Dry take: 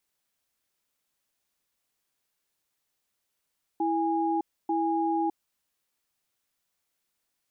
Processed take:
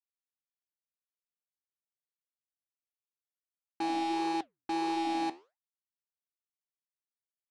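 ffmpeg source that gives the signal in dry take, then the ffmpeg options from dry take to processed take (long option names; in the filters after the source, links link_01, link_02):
-f lavfi -i "aevalsrc='0.0473*(sin(2*PI*329*t)+sin(2*PI*822*t))*clip(min(mod(t,0.89),0.61-mod(t,0.89))/0.005,0,1)':duration=1.57:sample_rate=44100"
-af "acrusher=bits=4:mix=0:aa=0.5,flanger=delay=3.9:depth=9.7:regen=-79:speed=1.6:shape=sinusoidal"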